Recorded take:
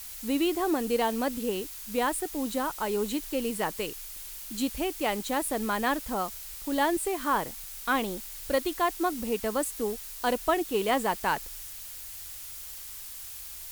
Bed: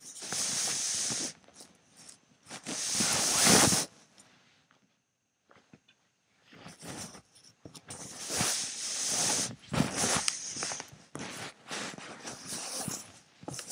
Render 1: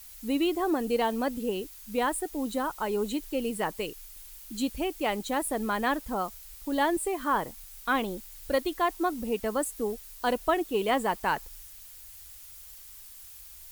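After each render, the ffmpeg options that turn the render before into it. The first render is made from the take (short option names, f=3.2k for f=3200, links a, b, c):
-af "afftdn=nr=8:nf=-42"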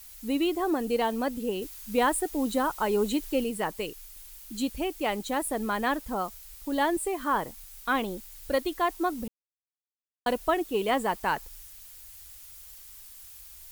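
-filter_complex "[0:a]asplit=5[a][b][c][d][e];[a]atrim=end=1.622[f];[b]atrim=start=1.618:end=3.442,asetpts=PTS-STARTPTS,volume=3.5dB[g];[c]atrim=start=3.438:end=9.28,asetpts=PTS-STARTPTS,afade=t=out:st=5.838:d=0.004:c=hsin[h];[d]atrim=start=9.28:end=10.26,asetpts=PTS-STARTPTS,volume=0[i];[e]atrim=start=10.26,asetpts=PTS-STARTPTS,afade=t=in:d=0.004:c=hsin[j];[f][g]acrossfade=d=0.004:c1=hsin:c2=hsin[k];[h][i][j]concat=n=3:v=0:a=1[l];[k][l]acrossfade=d=0.004:c1=hsin:c2=hsin"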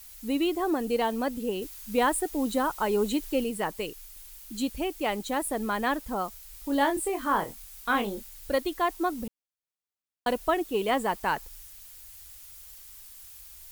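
-filter_complex "[0:a]asettb=1/sr,asplit=3[a][b][c];[a]atrim=end=6.524[d];[b]atrim=start=6.52:end=8.3,asetpts=PTS-STARTPTS,afade=t=in:d=0.004:c=qsin,afade=t=out:st=1.776:d=0.004:c=qsin,asplit=2[e][f];[f]adelay=25,volume=-6.5dB[g];[e][g]amix=inputs=2:normalize=0,atrim=end_sample=78498[h];[c]atrim=start=8.296[i];[d][h]acrossfade=d=0.004:c1=hsin:c2=qsin[j];[j][i]acrossfade=d=0.004:c1=qsin:c2=hsin"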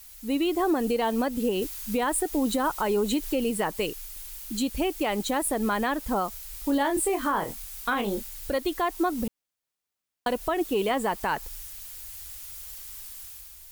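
-af "dynaudnorm=f=110:g=9:m=6.5dB,alimiter=limit=-17dB:level=0:latency=1:release=121"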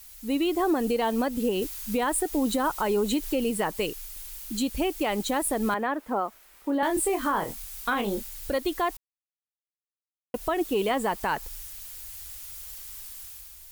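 -filter_complex "[0:a]asettb=1/sr,asplit=3[a][b][c];[a]atrim=end=5.744[d];[b]atrim=start=5.74:end=6.83,asetpts=PTS-STARTPTS,afade=t=in:d=0.004:c=qsin,afade=t=out:st=1.086:d=0.004:c=qsin,acrossover=split=210 2300:gain=0.0708 1 0.178[e][f][g];[e][f][g]amix=inputs=3:normalize=0[h];[c]atrim=start=6.826[i];[d][h]acrossfade=d=0.004:c1=hsin:c2=qsin[j];[j][i]acrossfade=d=0.004:c1=qsin:c2=hsin,asplit=3[k][l][m];[k]atrim=end=8.97,asetpts=PTS-STARTPTS,afade=t=out:st=8.966:d=0.004:c=hsin[n];[l]atrim=start=8.97:end=10.34,asetpts=PTS-STARTPTS,volume=0[o];[m]atrim=start=10.34,asetpts=PTS-STARTPTS,afade=t=in:d=0.004:c=hsin[p];[n][o][p]concat=n=3:v=0:a=1"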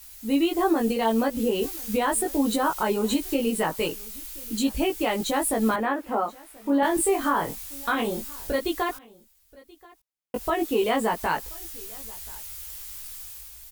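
-filter_complex "[0:a]asplit=2[a][b];[b]adelay=18,volume=-2dB[c];[a][c]amix=inputs=2:normalize=0,aecho=1:1:1031:0.0631"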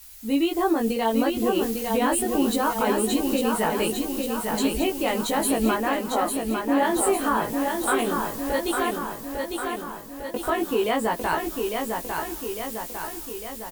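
-af "aecho=1:1:852|1704|2556|3408|4260|5112|5964|6816:0.596|0.351|0.207|0.122|0.0722|0.0426|0.0251|0.0148"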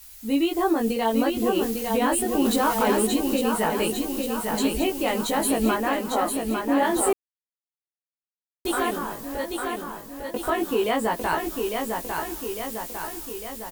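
-filter_complex "[0:a]asettb=1/sr,asplit=3[a][b][c];[a]atrim=end=2.454[d];[b]atrim=start=2.45:end=3.07,asetpts=PTS-STARTPTS,afade=t=in:d=0.004:c=qsin,afade=t=out:st=0.616:d=0.004:c=qsin,aeval=exprs='val(0)+0.5*0.0376*sgn(val(0))':c=same[e];[c]atrim=start=3.066[f];[d][e]acrossfade=d=0.004:c1=hsin:c2=qsin[g];[g][f]acrossfade=d=0.004:c1=qsin:c2=hsin,asplit=3[h][i][j];[h]atrim=end=7.13,asetpts=PTS-STARTPTS,afade=t=out:st=7.126:d=0.004:c=hsin[k];[i]atrim=start=7.13:end=8.65,asetpts=PTS-STARTPTS,volume=0[l];[j]atrim=start=8.65,asetpts=PTS-STARTPTS,afade=t=in:d=0.004:c=hsin[m];[k][l][m]concat=n=3:v=0:a=1"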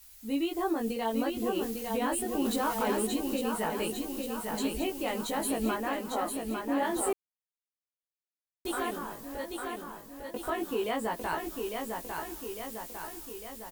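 -af "volume=-8dB"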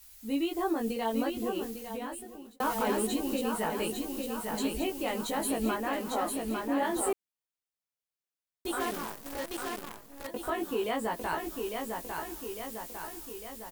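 -filter_complex "[0:a]asettb=1/sr,asplit=3[a][b][c];[a]atrim=end=5.934[d];[b]atrim=start=5.93:end=6.68,asetpts=PTS-STARTPTS,afade=t=in:d=0.004:c=qsin,afade=t=out:st=0.746:d=0.004:c=qsin,aeval=exprs='val(0)+0.5*0.00596*sgn(val(0))':c=same[e];[c]atrim=start=6.676[f];[d][e]acrossfade=d=0.004:c1=hsin:c2=qsin[g];[g][f]acrossfade=d=0.004:c1=qsin:c2=hsin,asettb=1/sr,asplit=3[h][i][j];[h]atrim=end=8.804[k];[i]atrim=start=8.8:end=10.27,asetpts=PTS-STARTPTS,afade=t=in:d=0.004:c=qsin,afade=t=out:st=1.466:d=0.004:c=qsin,acrusher=bits=7:dc=4:mix=0:aa=0.000001[l];[j]atrim=start=10.266[m];[k][l]acrossfade=d=0.004:c1=hsin:c2=qsin[n];[n][m]acrossfade=d=0.004:c1=qsin:c2=hsin,asplit=2[o][p];[o]atrim=end=2.6,asetpts=PTS-STARTPTS,afade=t=out:st=1.2:d=1.4[q];[p]atrim=start=2.6,asetpts=PTS-STARTPTS,afade=t=in:d=0.004:c=hsin[r];[q][r]concat=n=2:v=0:a=1"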